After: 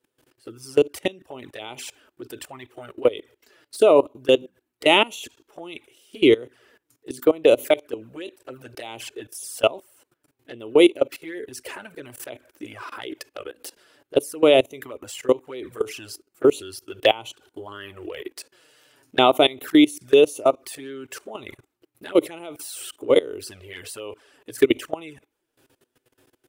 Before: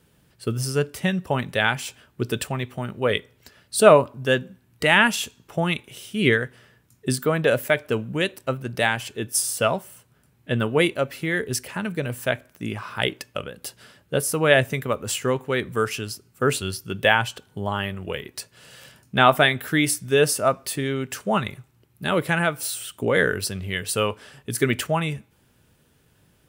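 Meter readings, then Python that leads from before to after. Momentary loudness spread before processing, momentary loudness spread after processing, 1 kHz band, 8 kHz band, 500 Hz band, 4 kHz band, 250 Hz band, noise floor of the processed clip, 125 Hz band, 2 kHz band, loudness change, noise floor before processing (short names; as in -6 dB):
14 LU, 22 LU, -3.0 dB, -8.5 dB, +2.5 dB, 0.0 dB, +2.0 dB, -79 dBFS, -15.5 dB, -7.5 dB, +2.5 dB, -62 dBFS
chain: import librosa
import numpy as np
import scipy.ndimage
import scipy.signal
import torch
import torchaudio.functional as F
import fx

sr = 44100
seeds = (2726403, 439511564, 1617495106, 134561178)

y = fx.env_flanger(x, sr, rest_ms=8.3, full_db=-19.0)
y = fx.level_steps(y, sr, step_db=21)
y = fx.low_shelf_res(y, sr, hz=240.0, db=-9.5, q=3.0)
y = y * librosa.db_to_amplitude(6.0)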